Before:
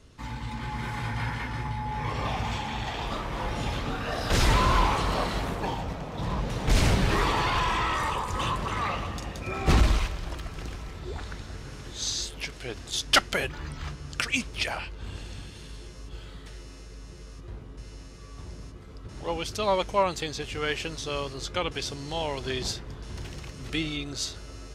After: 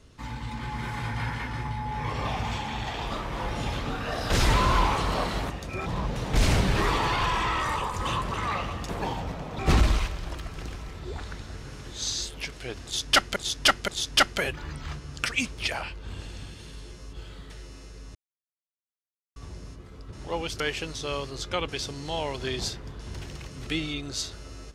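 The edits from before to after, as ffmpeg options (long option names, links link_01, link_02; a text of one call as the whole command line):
ffmpeg -i in.wav -filter_complex "[0:a]asplit=10[link_01][link_02][link_03][link_04][link_05][link_06][link_07][link_08][link_09][link_10];[link_01]atrim=end=5.502[link_11];[link_02]atrim=start=9.228:end=9.592[link_12];[link_03]atrim=start=6.198:end=9.232[link_13];[link_04]atrim=start=5.498:end=6.202[link_14];[link_05]atrim=start=9.588:end=13.362[link_15];[link_06]atrim=start=12.838:end=13.362[link_16];[link_07]atrim=start=12.838:end=17.11,asetpts=PTS-STARTPTS,afade=type=out:start_time=4.268:duration=0.004:curve=hsin[link_17];[link_08]atrim=start=17.11:end=18.32,asetpts=PTS-STARTPTS,volume=0[link_18];[link_09]atrim=start=18.32:end=19.562,asetpts=PTS-STARTPTS,afade=type=in:duration=0.004:curve=hsin[link_19];[link_10]atrim=start=20.628[link_20];[link_11][link_12]acrossfade=duration=0.004:curve1=hsin:curve2=hsin[link_21];[link_21][link_13]acrossfade=duration=0.004:curve1=hsin:curve2=hsin[link_22];[link_22][link_14]acrossfade=duration=0.004:curve1=hsin:curve2=hsin[link_23];[link_23][link_15]acrossfade=duration=0.004:curve1=hsin:curve2=hsin[link_24];[link_24][link_16]acrossfade=duration=0.004:curve1=hsin:curve2=hsin[link_25];[link_17][link_18][link_19]concat=n=3:v=0:a=1[link_26];[link_25][link_26]acrossfade=duration=0.004:curve1=hsin:curve2=hsin[link_27];[link_27][link_20]acrossfade=duration=0.004:curve1=hsin:curve2=hsin" out.wav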